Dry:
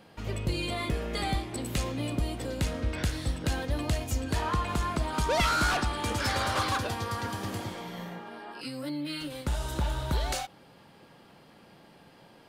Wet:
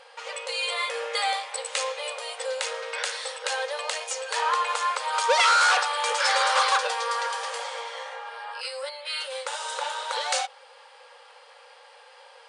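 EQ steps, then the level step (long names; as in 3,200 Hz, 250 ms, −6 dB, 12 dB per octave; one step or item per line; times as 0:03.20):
linear-phase brick-wall band-pass 450–9,900 Hz
Butterworth band-reject 660 Hz, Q 4.6
+8.0 dB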